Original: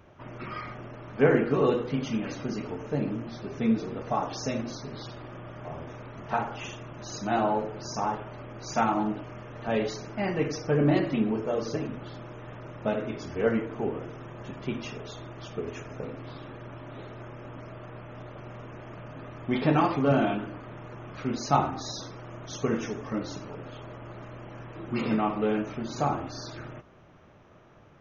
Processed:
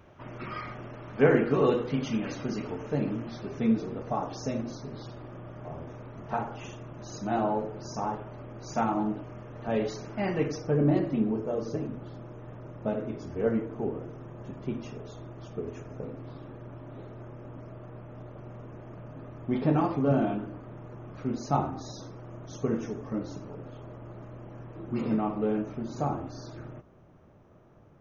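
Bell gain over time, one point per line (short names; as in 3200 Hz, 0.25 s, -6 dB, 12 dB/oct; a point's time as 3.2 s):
bell 3000 Hz 3 oct
3.32 s -0.5 dB
4.15 s -8 dB
9.54 s -8 dB
10.35 s -1.5 dB
10.79 s -11.5 dB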